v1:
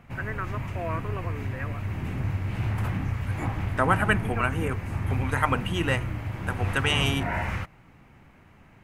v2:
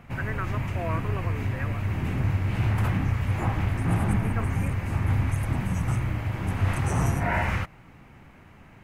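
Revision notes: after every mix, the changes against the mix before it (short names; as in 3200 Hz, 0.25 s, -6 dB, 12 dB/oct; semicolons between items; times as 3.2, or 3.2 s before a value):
second voice: add brick-wall FIR band-stop 260–5100 Hz; background +3.5 dB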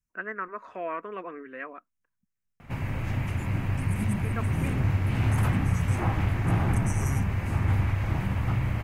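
background: entry +2.60 s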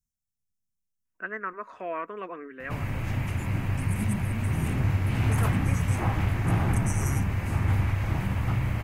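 first voice: entry +1.05 s; master: add high shelf 5000 Hz +4.5 dB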